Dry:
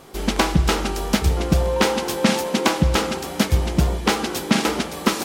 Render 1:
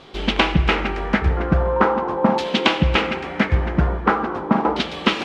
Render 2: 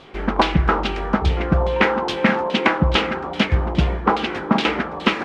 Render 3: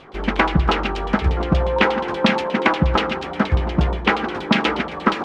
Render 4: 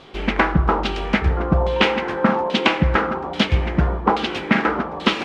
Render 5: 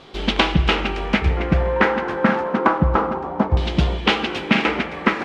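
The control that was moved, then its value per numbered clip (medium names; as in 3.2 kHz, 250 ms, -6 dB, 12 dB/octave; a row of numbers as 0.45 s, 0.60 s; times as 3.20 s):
LFO low-pass, rate: 0.42 Hz, 2.4 Hz, 8.4 Hz, 1.2 Hz, 0.28 Hz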